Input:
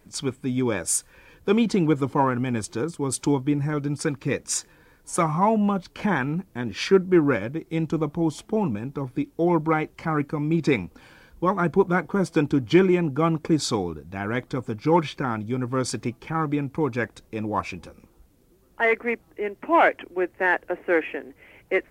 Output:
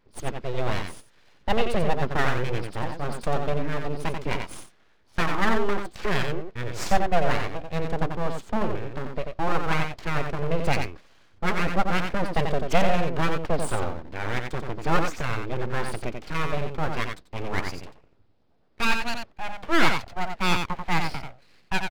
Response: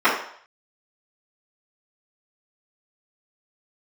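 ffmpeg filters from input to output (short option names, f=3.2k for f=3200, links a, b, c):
-af "aresample=11025,aresample=44100,aeval=exprs='abs(val(0))':c=same,aecho=1:1:89:0.531,agate=range=-7dB:threshold=-39dB:ratio=16:detection=peak"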